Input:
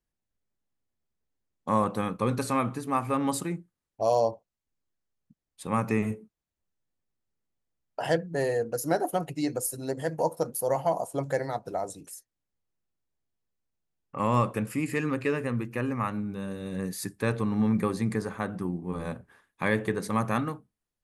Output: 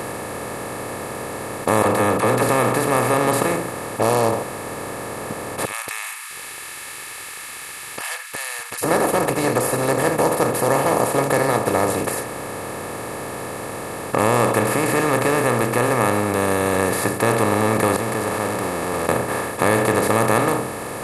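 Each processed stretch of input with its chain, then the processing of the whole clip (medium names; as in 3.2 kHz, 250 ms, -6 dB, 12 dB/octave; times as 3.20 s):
1.82–2.49 s: treble shelf 3.7 kHz -12 dB + phase dispersion lows, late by 41 ms, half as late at 590 Hz
5.65–8.83 s: steep high-pass 2.5 kHz 48 dB/octave + treble shelf 6.1 kHz -10.5 dB + upward compressor, threshold -57 dBFS
17.96–19.09 s: jump at every zero crossing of -32 dBFS + inverted gate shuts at -32 dBFS, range -27 dB
whole clip: spectral levelling over time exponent 0.2; comb 2.3 ms, depth 37%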